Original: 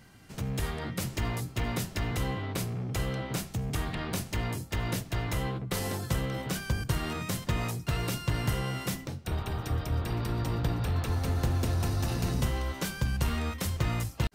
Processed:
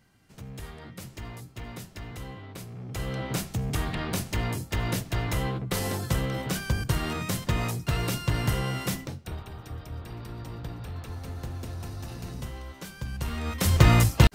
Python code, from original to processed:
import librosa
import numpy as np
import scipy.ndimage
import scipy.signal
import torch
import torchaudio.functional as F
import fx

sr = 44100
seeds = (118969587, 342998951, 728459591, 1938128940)

y = fx.gain(x, sr, db=fx.line((2.65, -8.5), (3.26, 3.0), (9.0, 3.0), (9.49, -8.0), (12.86, -8.0), (13.42, -1.0), (13.77, 12.0)))